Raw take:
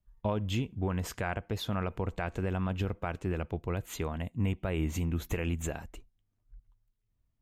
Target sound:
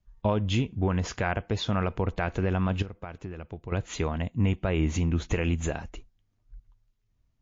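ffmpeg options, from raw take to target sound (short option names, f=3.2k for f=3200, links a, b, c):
-filter_complex "[0:a]asettb=1/sr,asplit=3[a][b][c];[a]atrim=end=2.824[d];[b]atrim=start=2.82:end=3.72,asetpts=PTS-STARTPTS,afade=t=in:d=0.004:c=qsin,afade=t=out:st=0.896:d=0.004:c=qsin,acompressor=threshold=-40dB:ratio=8[e];[c]atrim=start=3.716[f];[d][e]acrossfade=d=0.004:c1=hsin:c2=qsin[g];[g][f]acrossfade=d=0.004:c1=qsin:c2=hsin,volume=6dB" -ar 16000 -c:a libmp3lame -b:a 40k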